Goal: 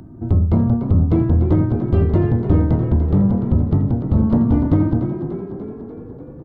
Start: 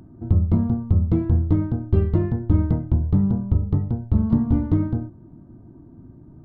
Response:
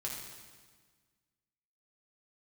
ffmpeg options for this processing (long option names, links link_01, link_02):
-filter_complex "[0:a]acrossover=split=490[link_01][link_02];[link_01]asoftclip=type=tanh:threshold=-16dB[link_03];[link_03][link_02]amix=inputs=2:normalize=0,asplit=9[link_04][link_05][link_06][link_07][link_08][link_09][link_10][link_11][link_12];[link_05]adelay=294,afreqshift=39,volume=-9.5dB[link_13];[link_06]adelay=588,afreqshift=78,volume=-13.8dB[link_14];[link_07]adelay=882,afreqshift=117,volume=-18.1dB[link_15];[link_08]adelay=1176,afreqshift=156,volume=-22.4dB[link_16];[link_09]adelay=1470,afreqshift=195,volume=-26.7dB[link_17];[link_10]adelay=1764,afreqshift=234,volume=-31dB[link_18];[link_11]adelay=2058,afreqshift=273,volume=-35.3dB[link_19];[link_12]adelay=2352,afreqshift=312,volume=-39.6dB[link_20];[link_04][link_13][link_14][link_15][link_16][link_17][link_18][link_19][link_20]amix=inputs=9:normalize=0,volume=6.5dB"